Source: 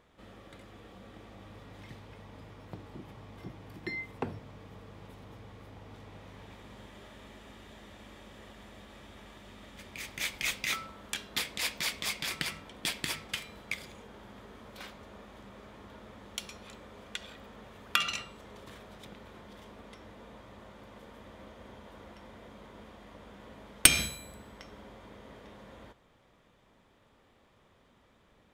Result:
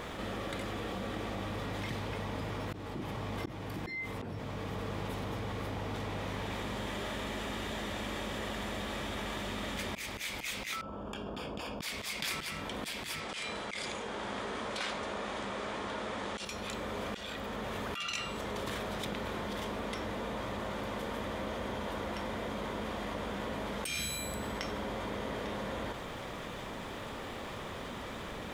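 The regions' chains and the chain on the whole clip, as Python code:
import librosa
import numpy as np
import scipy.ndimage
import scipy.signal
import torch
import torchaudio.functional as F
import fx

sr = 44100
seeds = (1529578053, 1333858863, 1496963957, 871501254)

y = fx.chain(x, sr, fx.moving_average(points=22),
    fx.level_steps(step_db=20), at=(10.81, 11.82))
y = fx.chain(y, sr, fx.steep_lowpass(hz=10000.0, slope=48),
    fx.low_shelf(hz=210.0, db=-10.5),
    fx.sustainer(db_per_s=74.0), at=(13.2, 16.45))
y = fx.low_shelf(y, sr, hz=170.0, db=-3.5)
y = fx.auto_swell(y, sr, attack_ms=647.0)
y = fx.env_flatten(y, sr, amount_pct=70)
y = y * 10.0 ** (7.0 / 20.0)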